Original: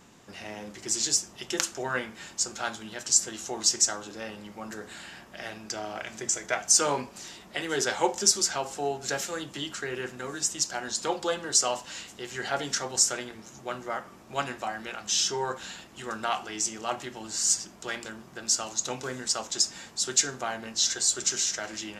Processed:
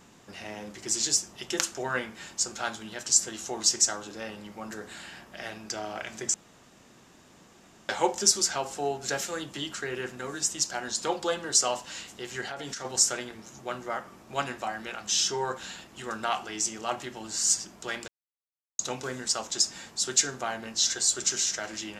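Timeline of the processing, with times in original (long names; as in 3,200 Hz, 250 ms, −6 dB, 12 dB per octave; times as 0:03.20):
0:06.34–0:07.89: fill with room tone
0:12.41–0:12.85: downward compressor 12 to 1, threshold −32 dBFS
0:18.08–0:18.79: silence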